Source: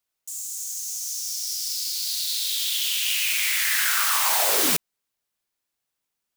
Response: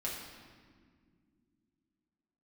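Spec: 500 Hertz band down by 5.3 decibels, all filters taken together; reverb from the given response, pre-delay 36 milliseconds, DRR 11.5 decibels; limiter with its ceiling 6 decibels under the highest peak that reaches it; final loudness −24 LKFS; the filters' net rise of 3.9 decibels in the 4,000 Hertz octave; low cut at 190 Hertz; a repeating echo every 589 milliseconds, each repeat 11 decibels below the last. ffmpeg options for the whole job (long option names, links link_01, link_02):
-filter_complex "[0:a]highpass=190,equalizer=frequency=500:width_type=o:gain=-7,equalizer=frequency=4000:width_type=o:gain=5,alimiter=limit=-13.5dB:level=0:latency=1,aecho=1:1:589|1178|1767:0.282|0.0789|0.0221,asplit=2[link_01][link_02];[1:a]atrim=start_sample=2205,adelay=36[link_03];[link_02][link_03]afir=irnorm=-1:irlink=0,volume=-14dB[link_04];[link_01][link_04]amix=inputs=2:normalize=0,volume=-2dB"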